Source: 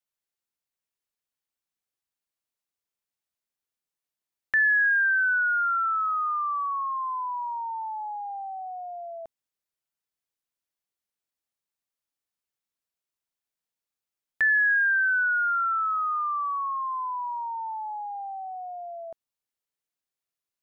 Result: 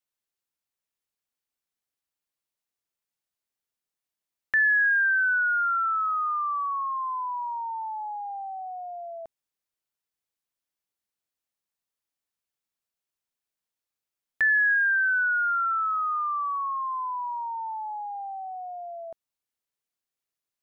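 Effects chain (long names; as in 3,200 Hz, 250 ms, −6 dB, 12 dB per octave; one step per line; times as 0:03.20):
0:14.74–0:16.61: bass and treble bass −1 dB, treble −10 dB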